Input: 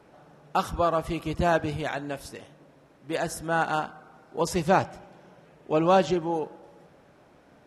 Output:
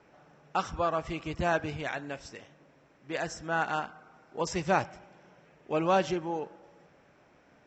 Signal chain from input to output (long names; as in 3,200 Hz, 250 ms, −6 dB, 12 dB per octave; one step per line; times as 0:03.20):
Chebyshev low-pass with heavy ripple 7,700 Hz, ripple 6 dB